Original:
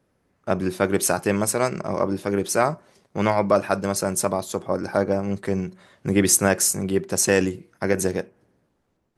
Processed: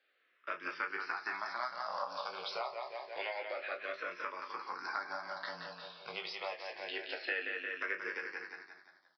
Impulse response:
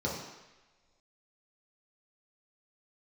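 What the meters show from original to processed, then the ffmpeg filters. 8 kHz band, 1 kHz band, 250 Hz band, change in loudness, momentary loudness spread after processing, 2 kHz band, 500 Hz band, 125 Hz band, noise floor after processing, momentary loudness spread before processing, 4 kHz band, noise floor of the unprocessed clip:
below −40 dB, −12.0 dB, −32.0 dB, −17.5 dB, 7 LU, −7.5 dB, −21.5 dB, −39.5 dB, −74 dBFS, 10 LU, −10.5 dB, −70 dBFS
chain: -filter_complex "[0:a]acrossover=split=2500[link_01][link_02];[link_02]acompressor=threshold=-39dB:ratio=4:attack=1:release=60[link_03];[link_01][link_03]amix=inputs=2:normalize=0,highpass=1100,asplit=2[link_04][link_05];[link_05]aecho=0:1:174|348|522|696|870|1044:0.447|0.214|0.103|0.0494|0.0237|0.0114[link_06];[link_04][link_06]amix=inputs=2:normalize=0,acompressor=threshold=-38dB:ratio=4,aemphasis=mode=production:type=bsi,asplit=2[link_07][link_08];[link_08]aecho=0:1:17|32:0.473|0.335[link_09];[link_07][link_09]amix=inputs=2:normalize=0,flanger=delay=9.9:depth=1.3:regen=-75:speed=1:shape=sinusoidal,afreqshift=-14,aresample=11025,aresample=44100,asplit=2[link_10][link_11];[link_11]afreqshift=-0.27[link_12];[link_10][link_12]amix=inputs=2:normalize=1,volume=7.5dB"

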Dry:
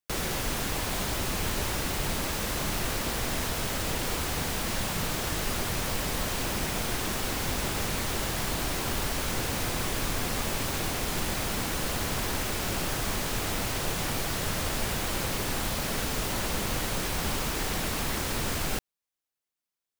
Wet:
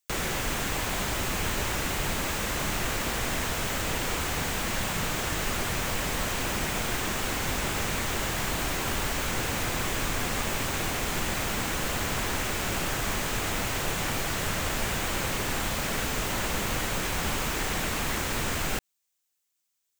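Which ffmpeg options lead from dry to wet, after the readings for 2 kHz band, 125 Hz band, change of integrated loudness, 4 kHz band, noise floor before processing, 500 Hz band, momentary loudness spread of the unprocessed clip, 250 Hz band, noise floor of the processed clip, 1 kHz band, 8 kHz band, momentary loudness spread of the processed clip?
+3.5 dB, 0.0 dB, +1.0 dB, +0.5 dB, below −85 dBFS, +0.5 dB, 0 LU, 0.0 dB, −78 dBFS, +2.0 dB, +1.0 dB, 0 LU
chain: -filter_complex "[0:a]aexciter=amount=1.9:drive=4.5:freq=6500,equalizer=frequency=5200:width=0.34:gain=8.5,acrossover=split=2700[link_01][link_02];[link_02]acompressor=threshold=-34dB:ratio=4:attack=1:release=60[link_03];[link_01][link_03]amix=inputs=2:normalize=0"

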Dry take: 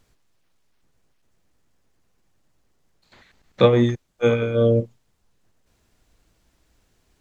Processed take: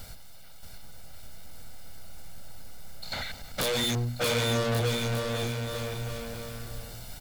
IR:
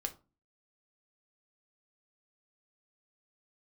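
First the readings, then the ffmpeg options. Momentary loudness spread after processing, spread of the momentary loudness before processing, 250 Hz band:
23 LU, 7 LU, −9.5 dB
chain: -filter_complex "[0:a]bandreject=frequency=60:width_type=h:width=6,bandreject=frequency=120:width_type=h:width=6,bandreject=frequency=180:width_type=h:width=6,bandreject=frequency=240:width_type=h:width=6,aecho=1:1:1.4:0.7,acrossover=split=2500[link_01][link_02];[link_01]acompressor=threshold=-31dB:ratio=6[link_03];[link_03][link_02]amix=inputs=2:normalize=0,aeval=exprs='0.237*sin(PI/2*5.01*val(0)/0.237)':channel_layout=same,aexciter=amount=1.6:drive=4.7:freq=3700,asoftclip=type=hard:threshold=-25dB,aecho=1:1:630|1134|1537|1860|2118:0.631|0.398|0.251|0.158|0.1,volume=-2dB"

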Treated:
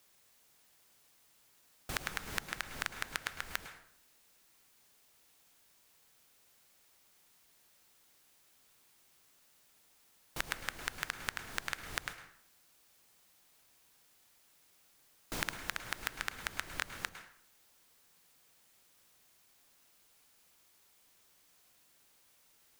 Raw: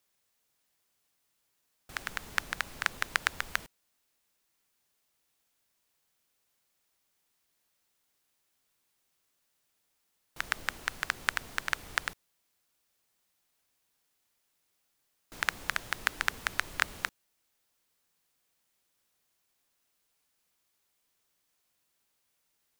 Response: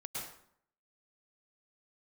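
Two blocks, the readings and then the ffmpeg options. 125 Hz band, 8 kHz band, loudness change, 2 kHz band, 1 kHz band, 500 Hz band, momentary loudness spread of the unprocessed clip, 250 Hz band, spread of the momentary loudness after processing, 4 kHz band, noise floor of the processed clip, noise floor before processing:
−0.5 dB, −2.5 dB, −6.5 dB, −7.0 dB, −6.5 dB, −2.0 dB, 7 LU, 0.0 dB, 11 LU, −4.5 dB, −68 dBFS, −77 dBFS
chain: -filter_complex "[0:a]acompressor=threshold=-42dB:ratio=12,asplit=2[link_01][link_02];[1:a]atrim=start_sample=2205[link_03];[link_02][link_03]afir=irnorm=-1:irlink=0,volume=-6.5dB[link_04];[link_01][link_04]amix=inputs=2:normalize=0,volume=7.5dB"

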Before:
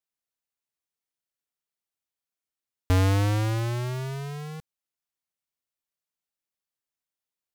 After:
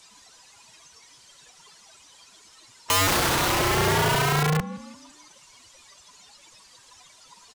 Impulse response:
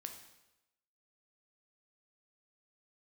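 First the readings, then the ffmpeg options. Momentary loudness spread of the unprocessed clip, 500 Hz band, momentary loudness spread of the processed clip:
15 LU, +7.5 dB, 7 LU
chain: -filter_complex "[0:a]aeval=exprs='val(0)+0.5*0.0168*sgn(val(0))':channel_layout=same,lowpass=frequency=8300:width=0.5412,lowpass=frequency=8300:width=1.3066,afftdn=noise_reduction=23:noise_floor=-42,equalizer=frequency=990:width_type=o:width=0.23:gain=11,asplit=5[link_01][link_02][link_03][link_04][link_05];[link_02]adelay=169,afreqshift=36,volume=-14dB[link_06];[link_03]adelay=338,afreqshift=72,volume=-22.6dB[link_07];[link_04]adelay=507,afreqshift=108,volume=-31.3dB[link_08];[link_05]adelay=676,afreqshift=144,volume=-39.9dB[link_09];[link_01][link_06][link_07][link_08][link_09]amix=inputs=5:normalize=0,acrossover=split=360|1000|3600[link_10][link_11][link_12][link_13];[link_13]acompressor=mode=upward:threshold=-58dB:ratio=2.5[link_14];[link_10][link_11][link_12][link_14]amix=inputs=4:normalize=0,aeval=exprs='(mod(23.7*val(0)+1,2)-1)/23.7':channel_layout=same,acontrast=79,adynamicequalizer=threshold=0.01:dfrequency=1700:dqfactor=0.7:tfrequency=1700:tqfactor=0.7:attack=5:release=100:ratio=0.375:range=3:mode=cutabove:tftype=highshelf,volume=4.5dB"

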